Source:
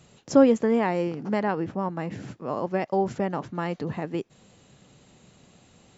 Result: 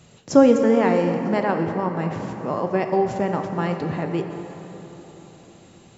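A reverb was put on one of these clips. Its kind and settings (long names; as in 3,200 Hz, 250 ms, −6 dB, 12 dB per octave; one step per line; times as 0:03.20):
dense smooth reverb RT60 4 s, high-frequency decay 0.55×, DRR 4.5 dB
level +3.5 dB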